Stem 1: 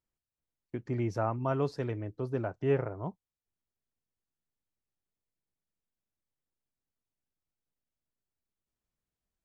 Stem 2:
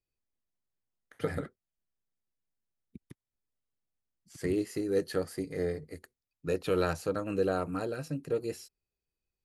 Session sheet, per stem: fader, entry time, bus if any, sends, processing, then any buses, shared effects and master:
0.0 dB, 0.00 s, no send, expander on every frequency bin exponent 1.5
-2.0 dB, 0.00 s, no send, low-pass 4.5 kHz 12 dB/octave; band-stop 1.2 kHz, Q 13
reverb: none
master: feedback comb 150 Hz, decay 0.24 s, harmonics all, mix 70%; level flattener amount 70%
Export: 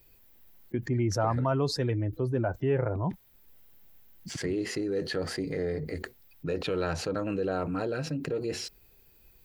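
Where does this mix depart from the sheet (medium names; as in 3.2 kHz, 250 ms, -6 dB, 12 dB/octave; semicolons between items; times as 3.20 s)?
stem 2 -2.0 dB -> -13.5 dB; master: missing feedback comb 150 Hz, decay 0.24 s, harmonics all, mix 70%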